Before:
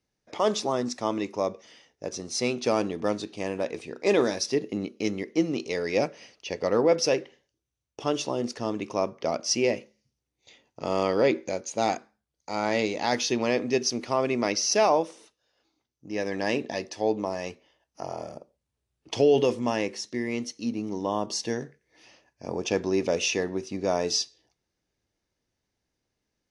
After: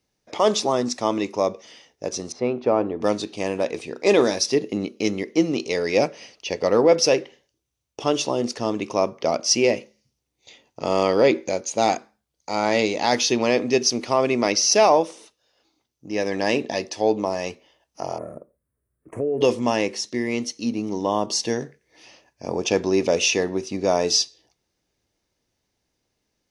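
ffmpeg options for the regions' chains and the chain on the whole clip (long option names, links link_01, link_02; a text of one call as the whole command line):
ffmpeg -i in.wav -filter_complex "[0:a]asettb=1/sr,asplit=3[link_01][link_02][link_03];[link_01]atrim=end=2.324[link_04];[link_02]atrim=start=2.32:end=3.01,asetpts=PTS-STARTPTS,afade=type=in:duration=0.004:curve=qsin,afade=type=out:start_time=0.686:duration=0.004:curve=qsin,lowpass=1300,equalizer=frequency=180:width_type=o:width=0.69:gain=-5[link_05];[link_03]atrim=start=3.006[link_06];[link_04][link_05]acrossfade=duration=0.004:curve1=hsin:curve2=qsin[link_07];[link_07][link_06]acrossfade=duration=0.004:curve1=qsin:curve2=hsin,asettb=1/sr,asplit=3[link_08][link_09][link_10];[link_08]atrim=end=18.184[link_11];[link_09]atrim=start=18.18:end=19.41,asetpts=PTS-STARTPTS,afade=type=in:duration=0.004:curve=qsin,afade=type=out:start_time=1.226:duration=0.004:curve=qsin,equalizer=frequency=830:width_type=o:width=0.39:gain=-15,acompressor=threshold=-30dB:ratio=2.5:attack=3.2:release=140:knee=1:detection=peak,asuperstop=centerf=4200:order=8:qfactor=0.6[link_12];[link_10]atrim=start=19.406[link_13];[link_11][link_12]acrossfade=duration=0.004:curve1=hsin:curve2=qsin[link_14];[link_14][link_13]acrossfade=duration=0.004:curve1=qsin:curve2=hsin,lowshelf=frequency=380:gain=-3.5,acontrast=28,equalizer=frequency=1600:width_type=o:width=0.8:gain=-3.5,volume=2dB" out.wav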